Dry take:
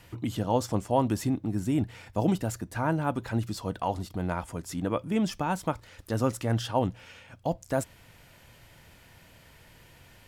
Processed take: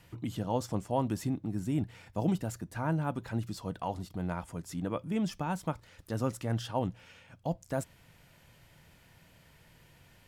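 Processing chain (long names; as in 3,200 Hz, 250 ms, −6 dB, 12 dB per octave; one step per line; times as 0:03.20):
parametric band 160 Hz +5.5 dB 0.52 octaves
level −6 dB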